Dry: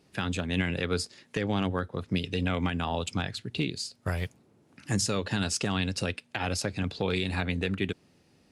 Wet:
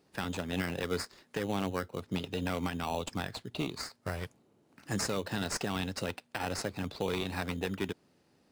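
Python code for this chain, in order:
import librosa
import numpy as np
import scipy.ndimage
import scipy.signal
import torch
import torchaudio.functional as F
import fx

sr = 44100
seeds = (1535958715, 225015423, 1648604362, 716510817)

p1 = fx.low_shelf(x, sr, hz=190.0, db=-9.0)
p2 = fx.sample_hold(p1, sr, seeds[0], rate_hz=3400.0, jitter_pct=0)
p3 = p1 + F.gain(torch.from_numpy(p2), -3.0).numpy()
y = F.gain(torch.from_numpy(p3), -6.0).numpy()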